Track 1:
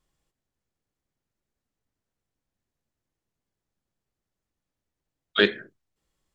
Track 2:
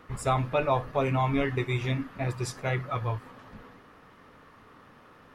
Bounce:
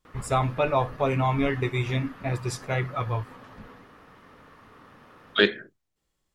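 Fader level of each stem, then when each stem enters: 0.0, +2.0 decibels; 0.00, 0.05 seconds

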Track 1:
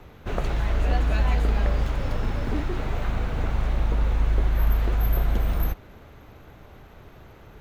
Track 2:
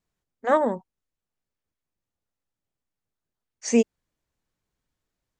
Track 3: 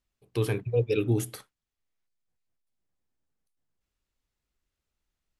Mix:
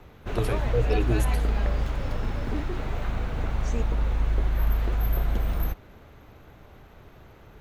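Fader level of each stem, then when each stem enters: −2.5, −15.5, −1.5 decibels; 0.00, 0.00, 0.00 seconds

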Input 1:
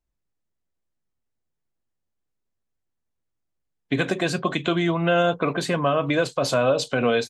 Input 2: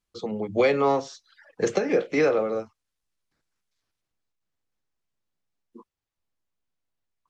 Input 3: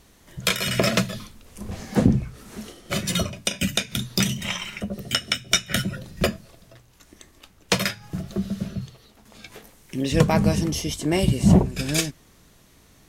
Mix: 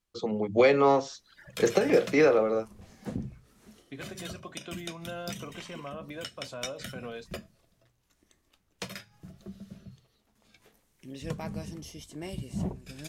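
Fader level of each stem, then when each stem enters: −19.5, 0.0, −17.5 decibels; 0.00, 0.00, 1.10 seconds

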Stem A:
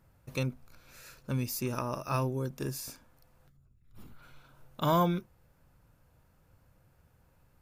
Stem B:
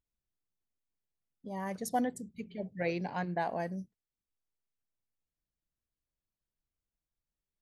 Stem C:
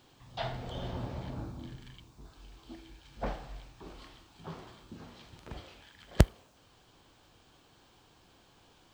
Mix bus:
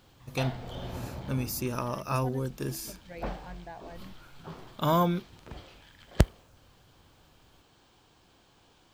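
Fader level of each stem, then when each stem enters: +1.5, −11.5, 0.0 decibels; 0.00, 0.30, 0.00 seconds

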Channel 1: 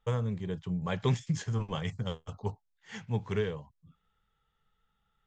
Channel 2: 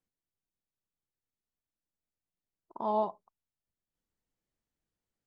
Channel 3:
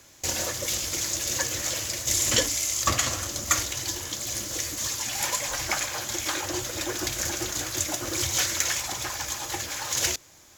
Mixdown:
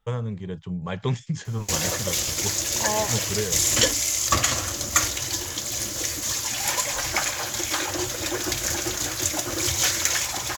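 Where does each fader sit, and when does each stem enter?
+2.5, +2.5, +3.0 decibels; 0.00, 0.00, 1.45 seconds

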